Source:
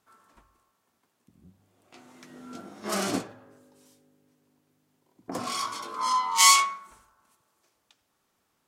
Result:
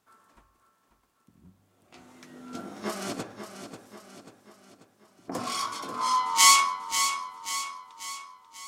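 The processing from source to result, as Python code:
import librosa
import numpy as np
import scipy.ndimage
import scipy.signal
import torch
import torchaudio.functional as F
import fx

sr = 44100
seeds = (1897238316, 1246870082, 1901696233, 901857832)

y = fx.over_compress(x, sr, threshold_db=-32.0, ratio=-0.5, at=(2.54, 3.23))
y = fx.echo_feedback(y, sr, ms=539, feedback_pct=50, wet_db=-9)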